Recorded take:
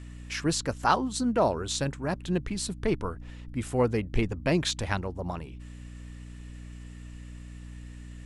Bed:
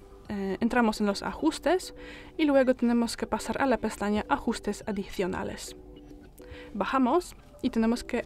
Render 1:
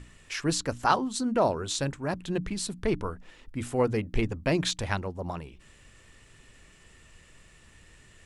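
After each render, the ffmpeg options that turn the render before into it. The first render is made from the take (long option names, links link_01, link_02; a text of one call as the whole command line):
ffmpeg -i in.wav -af "bandreject=frequency=60:width_type=h:width=6,bandreject=frequency=120:width_type=h:width=6,bandreject=frequency=180:width_type=h:width=6,bandreject=frequency=240:width_type=h:width=6,bandreject=frequency=300:width_type=h:width=6" out.wav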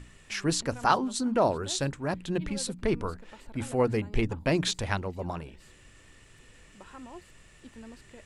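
ffmpeg -i in.wav -i bed.wav -filter_complex "[1:a]volume=-21.5dB[link_01];[0:a][link_01]amix=inputs=2:normalize=0" out.wav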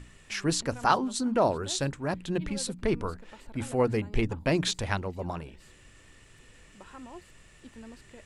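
ffmpeg -i in.wav -af anull out.wav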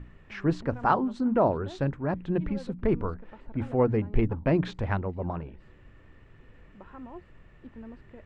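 ffmpeg -i in.wav -af "lowpass=1700,lowshelf=frequency=380:gain=4" out.wav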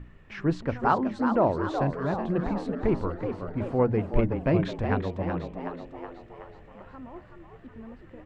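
ffmpeg -i in.wav -filter_complex "[0:a]asplit=8[link_01][link_02][link_03][link_04][link_05][link_06][link_07][link_08];[link_02]adelay=373,afreqshift=86,volume=-7.5dB[link_09];[link_03]adelay=746,afreqshift=172,volume=-12.9dB[link_10];[link_04]adelay=1119,afreqshift=258,volume=-18.2dB[link_11];[link_05]adelay=1492,afreqshift=344,volume=-23.6dB[link_12];[link_06]adelay=1865,afreqshift=430,volume=-28.9dB[link_13];[link_07]adelay=2238,afreqshift=516,volume=-34.3dB[link_14];[link_08]adelay=2611,afreqshift=602,volume=-39.6dB[link_15];[link_01][link_09][link_10][link_11][link_12][link_13][link_14][link_15]amix=inputs=8:normalize=0" out.wav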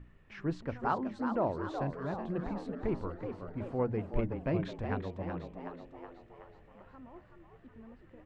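ffmpeg -i in.wav -af "volume=-8.5dB" out.wav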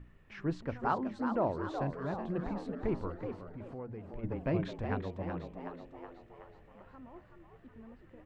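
ffmpeg -i in.wav -filter_complex "[0:a]asplit=3[link_01][link_02][link_03];[link_01]afade=type=out:start_time=3.38:duration=0.02[link_04];[link_02]acompressor=threshold=-43dB:ratio=3:attack=3.2:release=140:knee=1:detection=peak,afade=type=in:start_time=3.38:duration=0.02,afade=type=out:start_time=4.23:duration=0.02[link_05];[link_03]afade=type=in:start_time=4.23:duration=0.02[link_06];[link_04][link_05][link_06]amix=inputs=3:normalize=0" out.wav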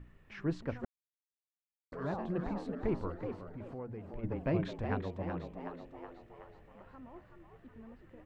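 ffmpeg -i in.wav -filter_complex "[0:a]asplit=3[link_01][link_02][link_03];[link_01]atrim=end=0.85,asetpts=PTS-STARTPTS,afade=type=out:start_time=0.846:duration=0.004:curve=hsin[link_04];[link_02]atrim=start=0.85:end=1.92,asetpts=PTS-STARTPTS,volume=0[link_05];[link_03]atrim=start=1.92,asetpts=PTS-STARTPTS,afade=type=in:duration=0.004:curve=hsin[link_06];[link_04][link_05][link_06]concat=n=3:v=0:a=1" out.wav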